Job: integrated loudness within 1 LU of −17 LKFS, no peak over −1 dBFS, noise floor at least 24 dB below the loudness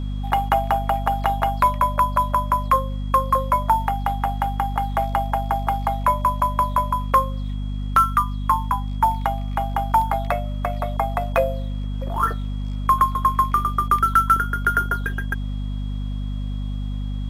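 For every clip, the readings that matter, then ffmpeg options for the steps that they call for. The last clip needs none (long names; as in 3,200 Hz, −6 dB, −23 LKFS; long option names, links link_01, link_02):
mains hum 50 Hz; hum harmonics up to 250 Hz; level of the hum −24 dBFS; interfering tone 3,300 Hz; level of the tone −49 dBFS; integrated loudness −22.0 LKFS; sample peak −3.5 dBFS; target loudness −17.0 LKFS
→ -af "bandreject=frequency=50:width_type=h:width=6,bandreject=frequency=100:width_type=h:width=6,bandreject=frequency=150:width_type=h:width=6,bandreject=frequency=200:width_type=h:width=6,bandreject=frequency=250:width_type=h:width=6"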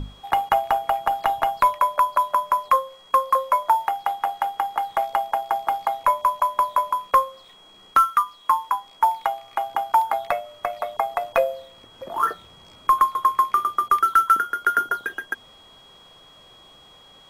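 mains hum none found; interfering tone 3,300 Hz; level of the tone −49 dBFS
→ -af "bandreject=frequency=3300:width=30"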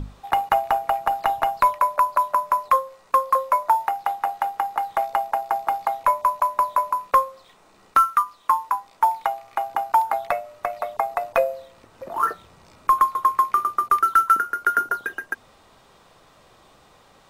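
interfering tone none found; integrated loudness −22.0 LKFS; sample peak −4.5 dBFS; target loudness −17.0 LKFS
→ -af "volume=5dB,alimiter=limit=-1dB:level=0:latency=1"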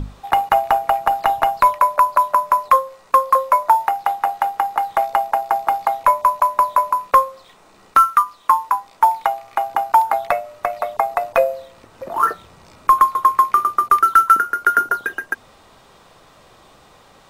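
integrated loudness −17.5 LKFS; sample peak −1.0 dBFS; background noise floor −50 dBFS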